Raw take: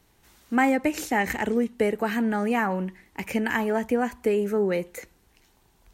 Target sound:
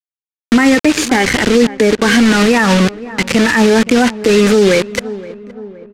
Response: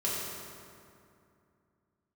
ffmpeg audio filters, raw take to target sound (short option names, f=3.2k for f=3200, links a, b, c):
-filter_complex "[0:a]afftfilt=real='re*pow(10,11/40*sin(2*PI*(2*log(max(b,1)*sr/1024/100)/log(2)-(-1.1)*(pts-256)/sr)))':imag='im*pow(10,11/40*sin(2*PI*(2*log(max(b,1)*sr/1024/100)/log(2)-(-1.1)*(pts-256)/sr)))':win_size=1024:overlap=0.75,highpass=f=53:p=1,acrusher=bits=4:mix=0:aa=0.000001,lowpass=6.7k,equalizer=f=780:w=1.5:g=-6.5,asplit=2[a][b];[b]adelay=519,lowpass=f=1.3k:p=1,volume=-20.5dB,asplit=2[c][d];[d]adelay=519,lowpass=f=1.3k:p=1,volume=0.54,asplit=2[e][f];[f]adelay=519,lowpass=f=1.3k:p=1,volume=0.54,asplit=2[g][h];[h]adelay=519,lowpass=f=1.3k:p=1,volume=0.54[i];[a][c][e][g][i]amix=inputs=5:normalize=0,alimiter=level_in=19.5dB:limit=-1dB:release=50:level=0:latency=1,volume=-1dB"